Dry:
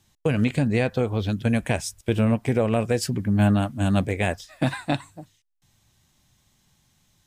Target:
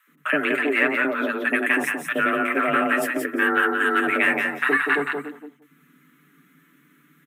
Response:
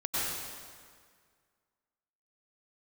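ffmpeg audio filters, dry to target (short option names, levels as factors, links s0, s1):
-filter_complex "[0:a]aecho=1:1:6.8:0.54,acrossover=split=300|5100[s0][s1][s2];[s0]acompressor=threshold=0.0224:ratio=6[s3];[s3][s1][s2]amix=inputs=3:normalize=0,aeval=exprs='clip(val(0),-1,0.119)':c=same,firequalizer=gain_entry='entry(170,0);entry(690,-11);entry(1200,14);entry(4500,-20);entry(12000,5)':delay=0.05:min_phase=1,acrossover=split=790[s4][s5];[s4]adelay=70[s6];[s6][s5]amix=inputs=2:normalize=0,afreqshift=140,highshelf=f=6800:g=-5,asplit=2[s7][s8];[s8]aecho=0:1:175|350|525:0.596|0.0893|0.0134[s9];[s7][s9]amix=inputs=2:normalize=0,volume=1.68"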